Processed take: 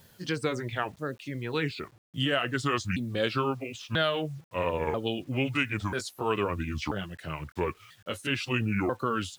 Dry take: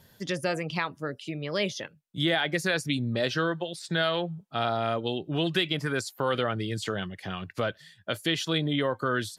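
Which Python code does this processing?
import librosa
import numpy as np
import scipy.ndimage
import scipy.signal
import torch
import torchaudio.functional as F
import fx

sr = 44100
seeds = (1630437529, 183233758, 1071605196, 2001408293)

y = fx.pitch_ramps(x, sr, semitones=-7.0, every_ms=988)
y = fx.quant_dither(y, sr, seeds[0], bits=10, dither='none')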